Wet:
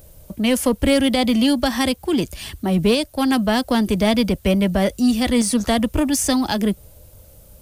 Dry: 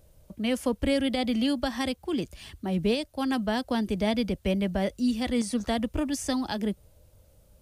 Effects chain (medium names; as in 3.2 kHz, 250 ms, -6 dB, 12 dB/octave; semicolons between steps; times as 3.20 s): treble shelf 9.9 kHz +11.5 dB; in parallel at -3 dB: saturation -29 dBFS, distortion -9 dB; on the sum: trim +6.5 dB